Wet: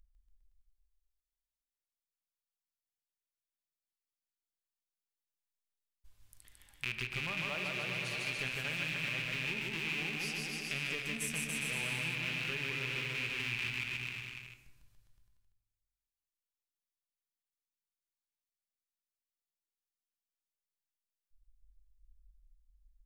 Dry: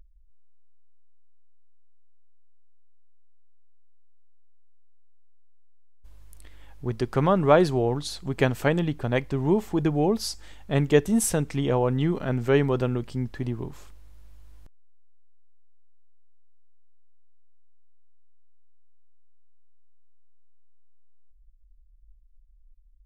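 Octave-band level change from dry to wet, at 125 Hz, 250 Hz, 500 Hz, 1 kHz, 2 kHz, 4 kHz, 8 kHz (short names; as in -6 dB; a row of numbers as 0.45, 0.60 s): -18.0, -21.0, -24.0, -18.0, +1.0, 0.0, -9.0 dB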